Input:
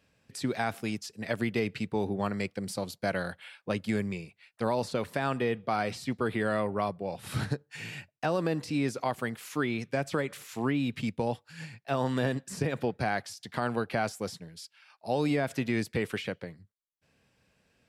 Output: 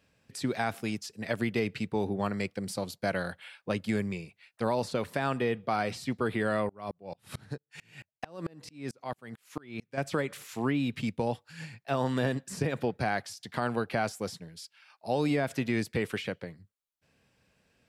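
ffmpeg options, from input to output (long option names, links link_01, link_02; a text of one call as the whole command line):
ffmpeg -i in.wav -filter_complex "[0:a]asettb=1/sr,asplit=3[link_01][link_02][link_03];[link_01]atrim=end=6.694[link_04];[link_02]atrim=start=6.69:end=9.98,asetpts=PTS-STARTPTS,afade=type=in:duration=0.004:curve=qsin,afade=type=out:start_time=3.286:duration=0.004:curve=qsin,aeval=exprs='val(0)*pow(10,-32*if(lt(mod(-4.5*n/s,1),2*abs(-4.5)/1000),1-mod(-4.5*n/s,1)/(2*abs(-4.5)/1000),(mod(-4.5*n/s,1)-2*abs(-4.5)/1000)/(1-2*abs(-4.5)/1000))/20)':channel_layout=same[link_05];[link_03]atrim=start=9.976[link_06];[link_04][link_05]acrossfade=duration=0.004:curve1=hsin:curve2=qsin[link_07];[link_07][link_06]acrossfade=duration=0.004:curve1=qsin:curve2=hsin" out.wav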